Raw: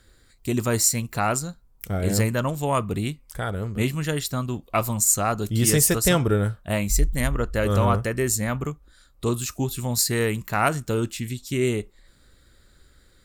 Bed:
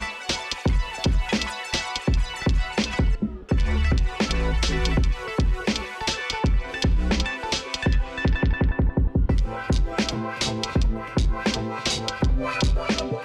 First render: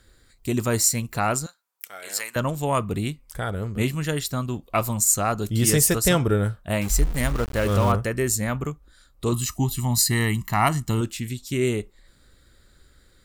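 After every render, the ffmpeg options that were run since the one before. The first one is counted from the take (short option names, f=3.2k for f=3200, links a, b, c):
-filter_complex "[0:a]asettb=1/sr,asplit=3[a][b][c];[a]atrim=end=1.464[d];[b]atrim=start=1.46:end=2.36,asetpts=PTS-STARTPTS,afade=t=in:d=0.004:c=qsin,afade=t=out:st=0.896:d=0.004:c=qsin,highpass=1.2k[e];[c]atrim=start=2.356[f];[d][e]acrossfade=d=0.004:c1=hsin:c2=qsin[g];[g][f]acrossfade=d=0.004:c1=qsin:c2=hsin,asettb=1/sr,asplit=3[h][i][j];[h]atrim=end=6.814[k];[i]atrim=start=6.81:end=7.92,asetpts=PTS-STARTPTS,afade=t=in:d=0.004:c=qsin,afade=t=out:st=1.106:d=0.004:c=qsin,aeval=exprs='val(0)*gte(abs(val(0)),0.0316)':c=same[l];[j]atrim=start=7.916[m];[k][l]acrossfade=d=0.004:c1=hsin:c2=qsin[n];[n][m]acrossfade=d=0.004:c1=qsin:c2=hsin,asettb=1/sr,asplit=3[o][p][q];[o]atrim=end=9.324[r];[p]atrim=start=9.32:end=11.01,asetpts=PTS-STARTPTS,afade=t=in:d=0.004:c=qsin,afade=t=out:st=1.686:d=0.004:c=qsin,aecho=1:1:1:0.75,atrim=end_sample=74529[s];[q]atrim=start=11.006[t];[r][s]acrossfade=d=0.004:c1=hsin:c2=qsin[u];[u][t]acrossfade=d=0.004:c1=qsin:c2=hsin"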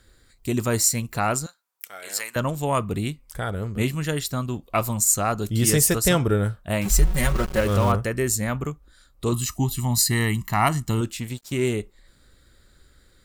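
-filter_complex "[0:a]asettb=1/sr,asplit=3[a][b][c];[a]atrim=end=6.854[d];[b]atrim=start=6.85:end=7.61,asetpts=PTS-STARTPTS,afade=t=in:d=0.004:c=qsin,afade=t=out:st=0.756:d=0.004:c=qsin,aecho=1:1:5.4:0.86,atrim=end_sample=33516[e];[c]atrim=start=7.606[f];[d][e]acrossfade=d=0.004:c1=hsin:c2=qsin[g];[g][f]acrossfade=d=0.004:c1=qsin:c2=hsin,asettb=1/sr,asplit=3[h][i][j];[h]atrim=end=11.204[k];[i]atrim=start=11.2:end=11.73,asetpts=PTS-STARTPTS,afade=t=in:d=0.004:c=qsin,afade=t=out:st=0.526:d=0.004:c=qsin,aeval=exprs='sgn(val(0))*max(abs(val(0))-0.00596,0)':c=same[l];[j]atrim=start=11.726[m];[k][l]acrossfade=d=0.004:c1=hsin:c2=qsin[n];[n][m]acrossfade=d=0.004:c1=qsin:c2=hsin"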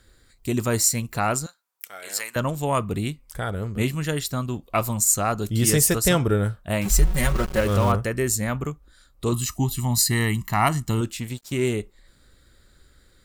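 -af anull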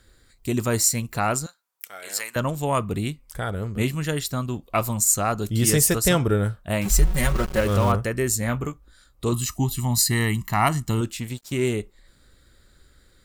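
-filter_complex "[0:a]asettb=1/sr,asplit=3[a][b][c];[a]atrim=end=8.404[d];[b]atrim=start=8.4:end=9.25,asetpts=PTS-STARTPTS,afade=t=in:d=0.004:c=qsin,afade=t=out:st=0.846:d=0.004:c=qsin,asplit=2[e][f];[f]adelay=17,volume=-9dB[g];[e][g]amix=inputs=2:normalize=0,atrim=end_sample=37485[h];[c]atrim=start=9.246[i];[d][h]acrossfade=d=0.004:c1=hsin:c2=qsin[j];[j][i]acrossfade=d=0.004:c1=qsin:c2=hsin"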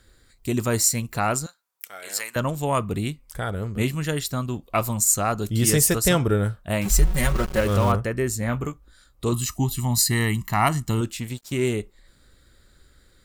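-filter_complex "[0:a]asettb=1/sr,asplit=3[a][b][c];[a]atrim=end=8.004[d];[b]atrim=start=8:end=8.53,asetpts=PTS-STARTPTS,afade=t=in:d=0.004:c=qsin,afade=t=out:st=0.526:d=0.004:c=qsin,highshelf=f=3.5k:g=-7[e];[c]atrim=start=8.526[f];[d][e]acrossfade=d=0.004:c1=hsin:c2=qsin[g];[g][f]acrossfade=d=0.004:c1=qsin:c2=hsin"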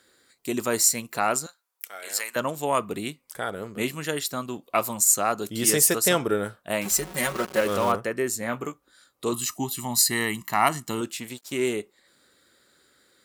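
-af "highpass=280,equalizer=f=11k:t=o:w=0.23:g=2.5"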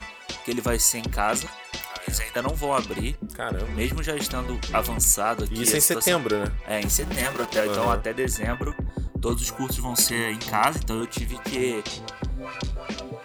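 -filter_complex "[1:a]volume=-8.5dB[a];[0:a][a]amix=inputs=2:normalize=0"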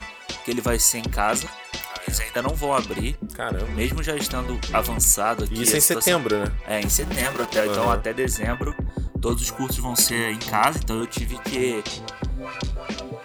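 -af "volume=2dB"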